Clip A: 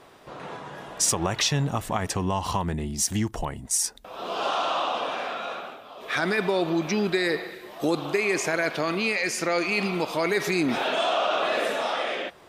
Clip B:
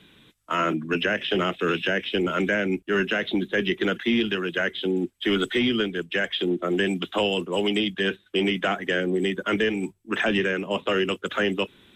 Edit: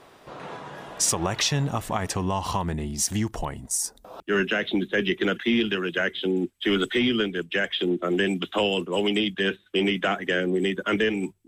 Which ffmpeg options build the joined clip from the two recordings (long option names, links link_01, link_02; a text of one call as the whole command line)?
ffmpeg -i cue0.wav -i cue1.wav -filter_complex "[0:a]asettb=1/sr,asplit=3[link_01][link_02][link_03];[link_01]atrim=end=3.664[link_04];[link_02]atrim=start=3.66:end=4.2,asetpts=PTS-STARTPTS,afade=type=in:duration=0.004:curve=qsin,afade=type=out:start_time=0.536:duration=0.004:curve=qsin,equalizer=frequency=2500:width_type=o:width=1.6:gain=-12[link_05];[link_03]atrim=start=4.196[link_06];[link_04][link_05]acrossfade=duration=0.004:curve1=hsin:curve2=qsin[link_07];[link_07][link_06]acrossfade=duration=0.004:curve1=qsin:curve2=hsin,apad=whole_dur=11.47,atrim=end=11.47,atrim=end=4.202[link_08];[1:a]atrim=start=2.798:end=10.07[link_09];[link_08][link_09]acrossfade=duration=0.004:curve1=hsin:curve2=hsin" out.wav